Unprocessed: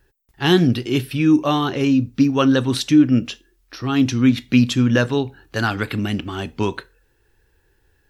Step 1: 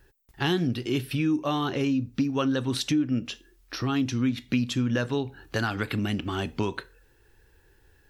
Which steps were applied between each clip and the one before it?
compressor 3:1, threshold -28 dBFS, peak gain reduction 14.5 dB; gain +1.5 dB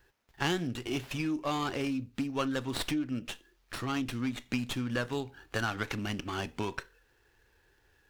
low shelf 490 Hz -8.5 dB; running maximum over 5 samples; gain -1.5 dB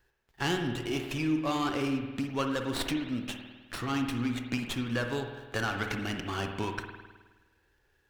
sample leveller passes 1; spring tank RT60 1.3 s, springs 51 ms, chirp 60 ms, DRR 4.5 dB; gain -3 dB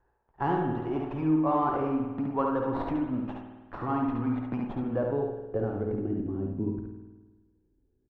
low-pass sweep 930 Hz -> 270 Hz, 4.47–6.66; on a send: echo 70 ms -3.5 dB

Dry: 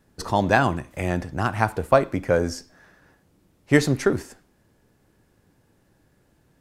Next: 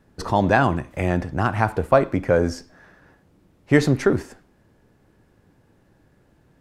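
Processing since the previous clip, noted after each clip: high shelf 4200 Hz -9.5 dB; in parallel at -2 dB: limiter -14 dBFS, peak gain reduction 11 dB; on the sum: gain -1 dB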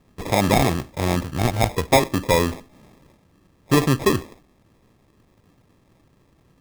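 sample-and-hold 30×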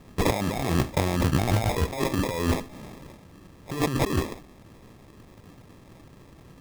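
negative-ratio compressor -27 dBFS, ratio -1; gain +2 dB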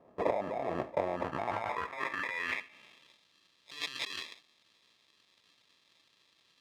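dynamic EQ 2100 Hz, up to +6 dB, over -45 dBFS, Q 1.2; band-pass sweep 640 Hz -> 3800 Hz, 1.08–3.21; notch 780 Hz, Q 12

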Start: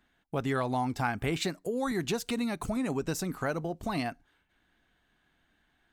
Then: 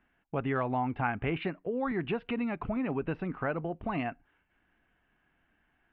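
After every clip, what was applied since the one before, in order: elliptic low-pass 2800 Hz, stop band 60 dB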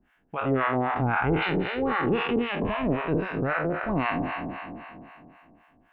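spectral trails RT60 2.79 s; harmonic tremolo 3.8 Hz, depth 100%, crossover 690 Hz; gain +6.5 dB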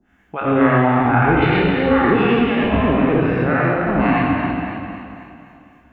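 reverb RT60 1.0 s, pre-delay 77 ms, DRR -3 dB

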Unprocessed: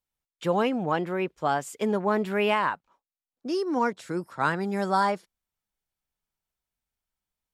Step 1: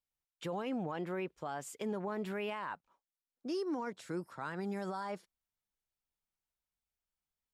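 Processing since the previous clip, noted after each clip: limiter -23 dBFS, peak gain reduction 11.5 dB; gain -7 dB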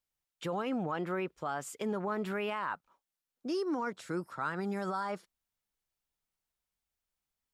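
dynamic EQ 1300 Hz, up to +7 dB, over -59 dBFS, Q 3.5; gain +3 dB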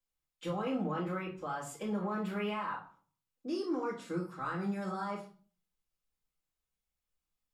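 reverb RT60 0.40 s, pre-delay 3 ms, DRR -6 dB; gain -9 dB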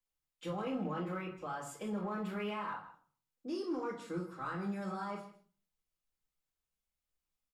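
in parallel at -12 dB: overloaded stage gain 34 dB; on the sum: echo 0.157 s -16 dB; gain -4.5 dB

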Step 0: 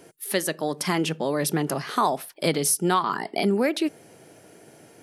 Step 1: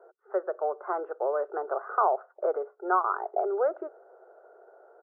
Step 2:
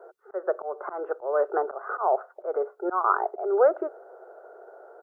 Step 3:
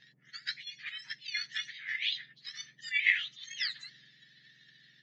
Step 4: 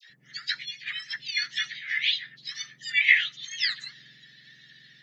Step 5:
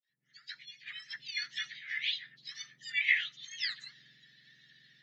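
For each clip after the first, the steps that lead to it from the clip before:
Chebyshev band-pass 370–1500 Hz, order 5; comb 1.5 ms, depth 35%; gain -1 dB
auto swell 0.203 s; gain +7 dB
spectrum mirrored in octaves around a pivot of 1600 Hz; transient shaper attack +8 dB, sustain +4 dB; air absorption 390 m; gain +2 dB
dispersion lows, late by 97 ms, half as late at 1100 Hz; gain +7.5 dB
opening faded in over 1.19 s; gain -8.5 dB

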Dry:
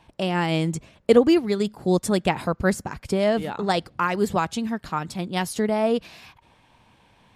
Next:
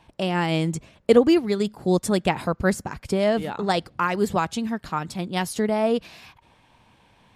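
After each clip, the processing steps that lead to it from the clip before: nothing audible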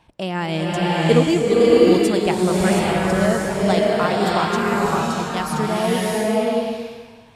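bloom reverb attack 0.66 s, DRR -5.5 dB; gain -1 dB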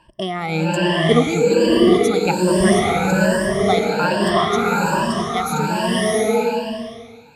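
moving spectral ripple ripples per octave 1.3, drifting +1.2 Hz, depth 20 dB; gain -2 dB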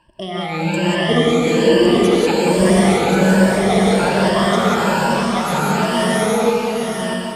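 regenerating reverse delay 0.649 s, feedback 48%, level -5 dB; non-linear reverb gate 0.21 s rising, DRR -1.5 dB; gain -3.5 dB

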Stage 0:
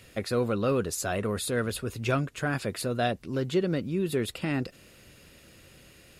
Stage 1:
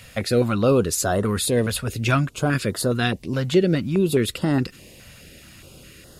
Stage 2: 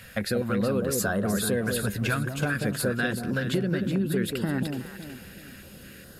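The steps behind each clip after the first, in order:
stepped notch 4.8 Hz 350–2400 Hz; gain +9 dB
thirty-one-band EQ 200 Hz +9 dB, 500 Hz +3 dB, 1600 Hz +12 dB, 6300 Hz -3 dB, 12500 Hz +7 dB; compressor, threshold -20 dBFS, peak gain reduction 10 dB; echo with dull and thin repeats by turns 0.186 s, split 850 Hz, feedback 59%, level -4 dB; gain -4 dB

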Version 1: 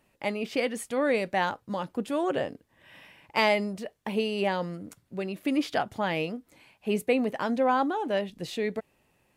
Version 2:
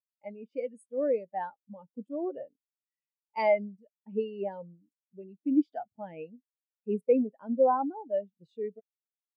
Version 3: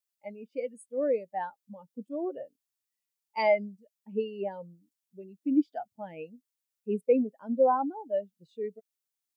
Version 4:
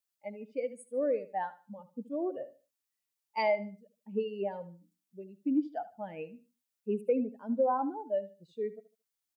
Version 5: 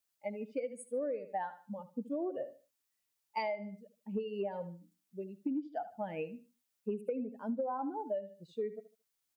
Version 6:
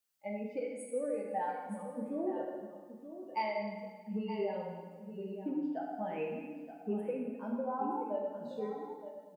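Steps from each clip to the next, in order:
bell 9100 Hz +8.5 dB 1.7 oct; spectral expander 2.5:1; gain -4.5 dB
high shelf 3200 Hz +9.5 dB
compressor 2:1, threshold -28 dBFS, peak gain reduction 6 dB; feedback echo 75 ms, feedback 26%, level -15.5 dB
compressor 12:1, threshold -36 dBFS, peak gain reduction 13.5 dB; gain +3.5 dB
echo 0.923 s -11.5 dB; plate-style reverb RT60 1.5 s, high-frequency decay 0.9×, DRR -1.5 dB; gain -2.5 dB

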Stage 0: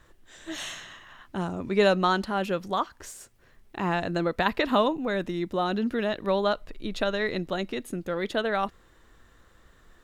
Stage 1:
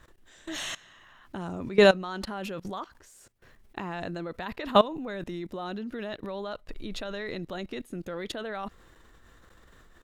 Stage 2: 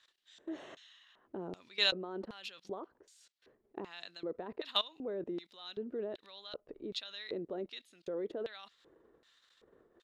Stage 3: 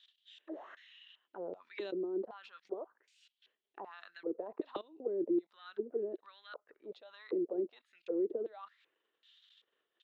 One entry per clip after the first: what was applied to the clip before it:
level quantiser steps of 20 dB; gain +5 dB
LFO band-pass square 1.3 Hz 420–3900 Hz; hard clip -19.5 dBFS, distortion -41 dB; gain +2 dB
auto-wah 340–3400 Hz, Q 5, down, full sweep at -35.5 dBFS; gain +9.5 dB

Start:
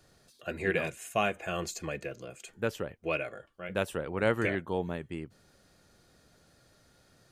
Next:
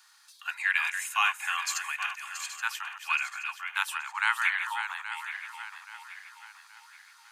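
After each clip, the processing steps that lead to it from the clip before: regenerating reverse delay 0.413 s, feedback 62%, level -8 dB; steep high-pass 850 Hz 96 dB/oct; gain +7.5 dB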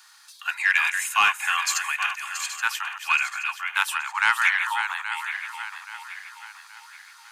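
soft clip -14 dBFS, distortion -22 dB; gain +7 dB

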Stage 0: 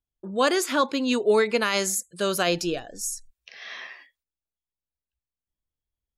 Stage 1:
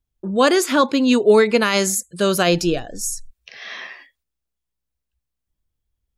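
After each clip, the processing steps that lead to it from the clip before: low shelf 250 Hz +8.5 dB; gain +5 dB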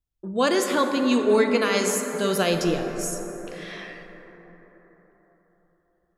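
plate-style reverb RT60 4.5 s, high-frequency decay 0.3×, DRR 4 dB; gain -6.5 dB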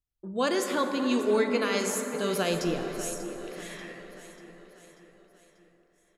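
feedback echo 0.589 s, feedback 53%, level -14 dB; gain -5.5 dB

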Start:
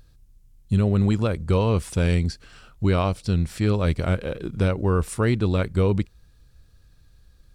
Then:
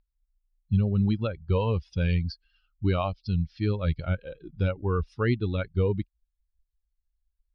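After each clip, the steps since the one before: per-bin expansion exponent 2; elliptic low-pass 5000 Hz, stop band 40 dB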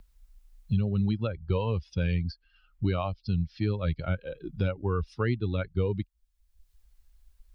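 three-band squash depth 70%; gain -2.5 dB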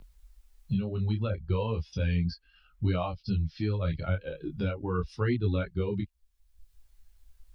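in parallel at +0.5 dB: limiter -26.5 dBFS, peak gain reduction 11.5 dB; on the sum: detuned doubles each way 13 cents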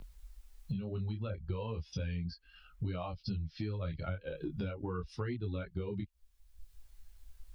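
compressor 6:1, threshold -38 dBFS, peak gain reduction 14 dB; gain +3 dB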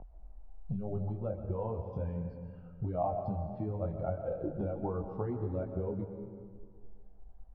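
synth low-pass 740 Hz, resonance Q 4.9; on a send at -6.5 dB: reverb RT60 2.0 s, pre-delay 85 ms

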